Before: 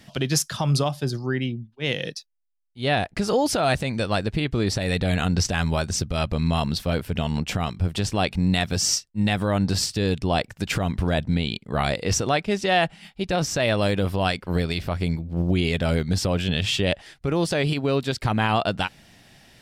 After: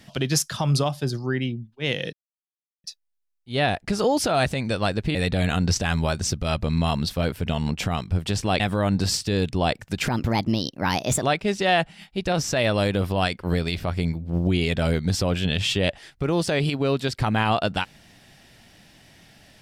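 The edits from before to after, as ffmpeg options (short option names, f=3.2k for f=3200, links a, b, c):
-filter_complex "[0:a]asplit=6[a][b][c][d][e][f];[a]atrim=end=2.13,asetpts=PTS-STARTPTS,afade=t=out:st=2.126:d=0.004:c=hsin,apad=pad_dur=0.71[g];[b]atrim=start=2.13:end=4.442,asetpts=PTS-STARTPTS,afade=t=in:d=0.004:c=hsin[h];[c]atrim=start=4.838:end=8.292[i];[d]atrim=start=9.288:end=10.764[j];[e]atrim=start=10.76:end=12.25,asetpts=PTS-STARTPTS,asetrate=57330,aresample=44100,atrim=end_sample=50545,asetpts=PTS-STARTPTS[k];[f]atrim=start=12.246[l];[g][h]concat=n=2:v=0:a=1[m];[m][i]acrossfade=d=0.004:c1=hsin:c2=hsin[n];[n][j]acrossfade=d=0.004:c1=hsin:c2=hsin[o];[o][k]acrossfade=d=0.004:c1=hsin:c2=hsin[p];[p][l]acrossfade=d=0.004:c1=hsin:c2=hsin"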